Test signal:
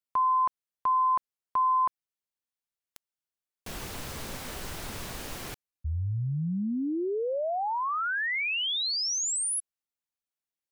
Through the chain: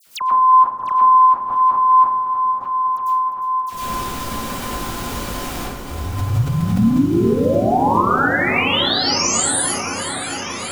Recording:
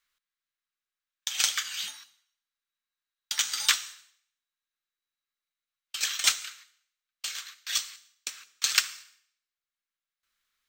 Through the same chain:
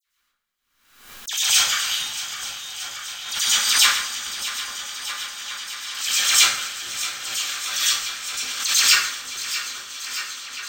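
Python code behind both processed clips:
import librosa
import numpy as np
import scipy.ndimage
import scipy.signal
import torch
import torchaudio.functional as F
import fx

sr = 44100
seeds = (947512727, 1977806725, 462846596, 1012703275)

p1 = fx.reverse_delay_fb(x, sr, ms=314, feedback_pct=85, wet_db=-12.0)
p2 = fx.dispersion(p1, sr, late='lows', ms=63.0, hz=2600.0)
p3 = p2 + fx.echo_opening(p2, sr, ms=415, hz=400, octaves=1, feedback_pct=70, wet_db=-6, dry=0)
p4 = fx.rev_plate(p3, sr, seeds[0], rt60_s=0.57, hf_ratio=0.65, predelay_ms=90, drr_db=-10.0)
y = fx.pre_swell(p4, sr, db_per_s=72.0)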